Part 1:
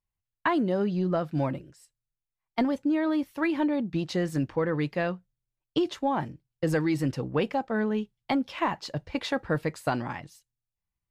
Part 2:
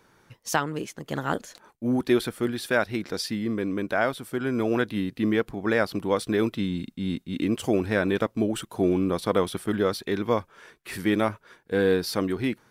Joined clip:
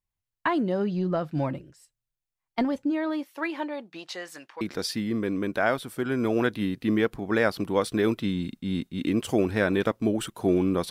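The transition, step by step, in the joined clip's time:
part 1
0:02.90–0:04.61: high-pass filter 260 Hz → 1,100 Hz
0:04.61: continue with part 2 from 0:02.96

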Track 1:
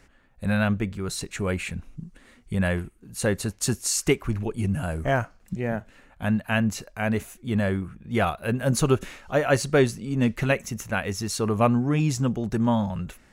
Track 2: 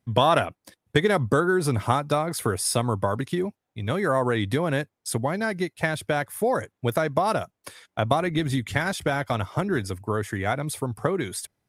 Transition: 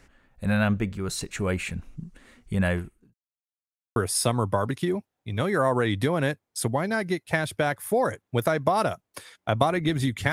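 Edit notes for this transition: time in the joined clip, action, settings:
track 1
0:02.62–0:03.14: fade out equal-power
0:03.14–0:03.96: silence
0:03.96: continue with track 2 from 0:02.46

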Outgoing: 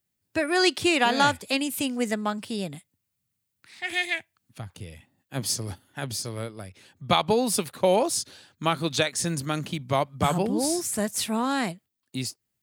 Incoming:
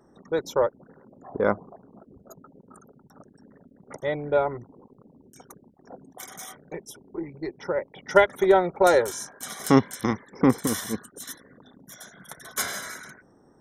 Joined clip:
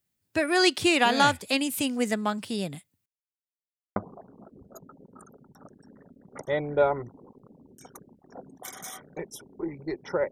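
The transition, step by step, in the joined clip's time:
outgoing
0:03.06–0:03.96: silence
0:03.96: continue with incoming from 0:01.51

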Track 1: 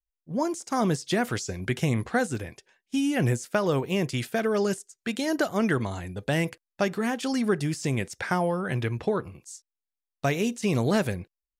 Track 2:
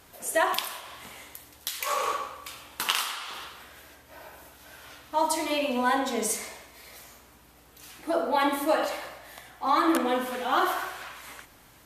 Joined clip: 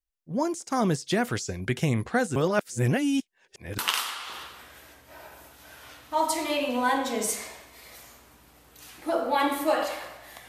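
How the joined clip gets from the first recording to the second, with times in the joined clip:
track 1
0:02.36–0:03.78: reverse
0:03.78: continue with track 2 from 0:02.79

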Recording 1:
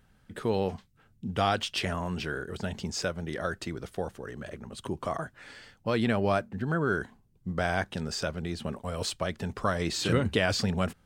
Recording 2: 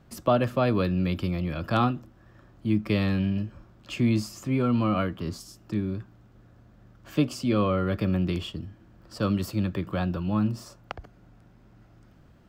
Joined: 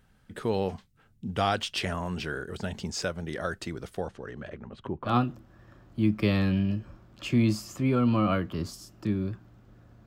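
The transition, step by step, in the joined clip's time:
recording 1
0:04.00–0:05.16: low-pass filter 7,100 Hz → 1,300 Hz
0:05.10: continue with recording 2 from 0:01.77, crossfade 0.12 s

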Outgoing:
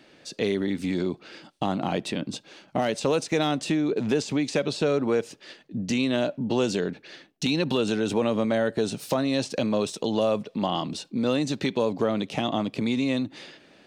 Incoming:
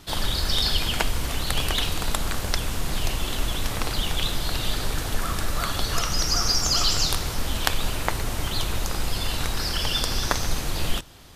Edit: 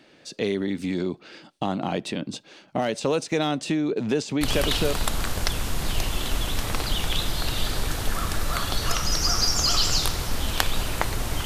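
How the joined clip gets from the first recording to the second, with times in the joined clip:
outgoing
0:04.67: continue with incoming from 0:01.74, crossfade 0.52 s logarithmic

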